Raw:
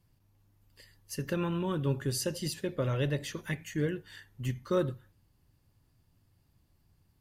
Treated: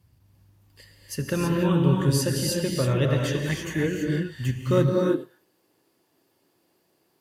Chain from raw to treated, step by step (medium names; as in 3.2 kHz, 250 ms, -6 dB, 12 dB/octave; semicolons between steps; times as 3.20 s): gated-style reverb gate 350 ms rising, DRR 0 dB; high-pass sweep 65 Hz -> 390 Hz, 4.56–5.25 s; trim +5 dB